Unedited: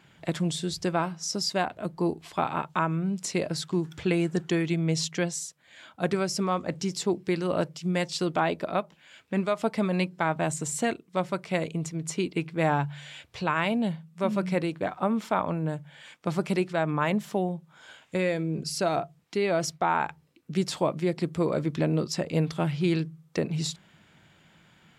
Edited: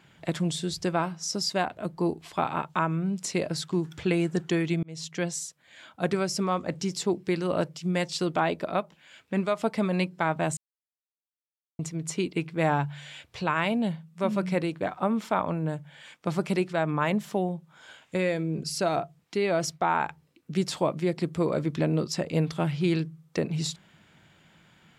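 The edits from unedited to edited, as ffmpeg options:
ffmpeg -i in.wav -filter_complex "[0:a]asplit=4[link_01][link_02][link_03][link_04];[link_01]atrim=end=4.83,asetpts=PTS-STARTPTS,afade=type=out:start_time=4.826:duration=0.004:curve=hsin[link_05];[link_02]atrim=start=4.83:end=10.57,asetpts=PTS-STARTPTS,afade=type=in:duration=0.48,afade=type=out:start_time=5.736:duration=0.004:curve=hsin[link_06];[link_03]atrim=start=10.57:end=11.79,asetpts=PTS-STARTPTS,volume=0[link_07];[link_04]atrim=start=11.79,asetpts=PTS-STARTPTS,afade=type=in:duration=0.004:curve=hsin[link_08];[link_05][link_06][link_07][link_08]concat=n=4:v=0:a=1" out.wav

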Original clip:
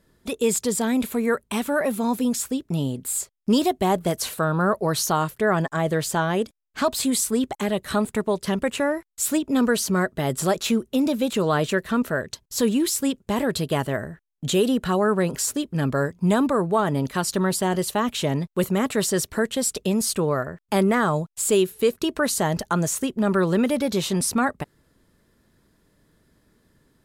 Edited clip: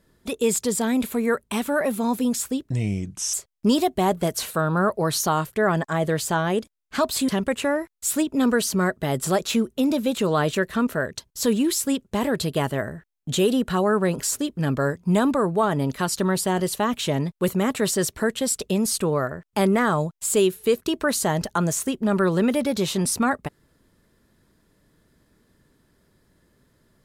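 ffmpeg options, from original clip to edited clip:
ffmpeg -i in.wav -filter_complex "[0:a]asplit=4[link_01][link_02][link_03][link_04];[link_01]atrim=end=2.704[link_05];[link_02]atrim=start=2.7:end=3.17,asetpts=PTS-STARTPTS,asetrate=32634,aresample=44100,atrim=end_sample=28009,asetpts=PTS-STARTPTS[link_06];[link_03]atrim=start=3.166:end=7.122[link_07];[link_04]atrim=start=8.438[link_08];[link_05][link_06]acrossfade=duration=0.004:curve1=hsin:curve2=hsin[link_09];[link_09][link_07]acrossfade=duration=0.004:curve1=hsin:curve2=hsin[link_10];[link_10][link_08]acrossfade=duration=0.004:curve1=hsin:curve2=hsin" out.wav

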